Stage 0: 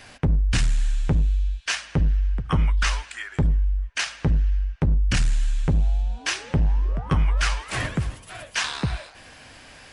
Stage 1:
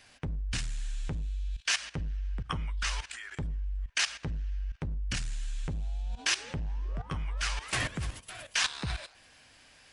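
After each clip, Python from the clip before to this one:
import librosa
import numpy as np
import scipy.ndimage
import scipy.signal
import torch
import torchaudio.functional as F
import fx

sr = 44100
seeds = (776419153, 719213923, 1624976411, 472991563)

y = fx.high_shelf(x, sr, hz=5500.0, db=-5.5)
y = fx.level_steps(y, sr, step_db=15)
y = fx.high_shelf(y, sr, hz=2600.0, db=11.0)
y = y * librosa.db_to_amplitude(-2.5)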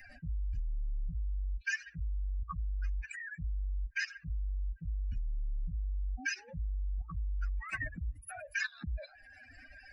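y = fx.spec_expand(x, sr, power=3.8)
y = fx.fixed_phaser(y, sr, hz=650.0, stages=8)
y = fx.band_squash(y, sr, depth_pct=40)
y = y * librosa.db_to_amplitude(1.0)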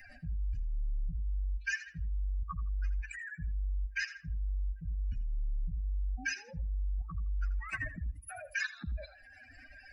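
y = fx.echo_feedback(x, sr, ms=82, feedback_pct=22, wet_db=-15.0)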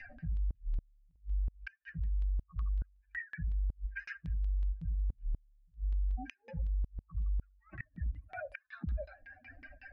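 y = fx.filter_lfo_lowpass(x, sr, shape='saw_down', hz=5.4, low_hz=270.0, high_hz=3400.0, q=1.6)
y = fx.gate_flip(y, sr, shuts_db=-29.0, range_db=-34)
y = y * librosa.db_to_amplitude(1.5)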